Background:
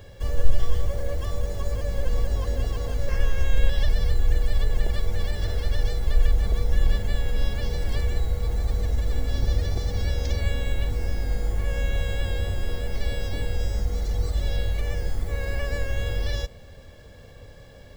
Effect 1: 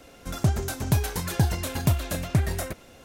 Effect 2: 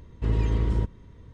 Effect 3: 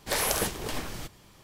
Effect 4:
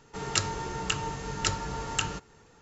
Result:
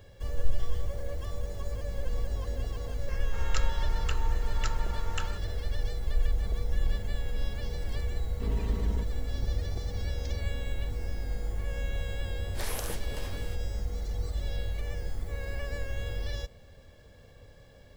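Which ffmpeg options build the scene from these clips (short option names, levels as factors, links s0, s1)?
-filter_complex "[0:a]volume=0.422[s0];[4:a]equalizer=f=1300:w=0.59:g=8.5[s1];[2:a]aecho=1:1:4.5:0.65[s2];[s1]atrim=end=2.61,asetpts=PTS-STARTPTS,volume=0.224,afade=t=in:d=0.004:c=hsin,afade=t=out:st=2.606:d=0.004:c=hsin,adelay=3190[s3];[s2]atrim=end=1.33,asetpts=PTS-STARTPTS,volume=0.376,afade=t=in:d=0.004:c=hsin,afade=t=out:st=1.326:d=0.004:c=hsin,adelay=360738S[s4];[3:a]atrim=end=1.43,asetpts=PTS-STARTPTS,volume=0.299,afade=t=in:d=0.004:c=hsin,afade=t=out:st=1.426:d=0.004:c=hsin,adelay=12480[s5];[s0][s3][s4][s5]amix=inputs=4:normalize=0"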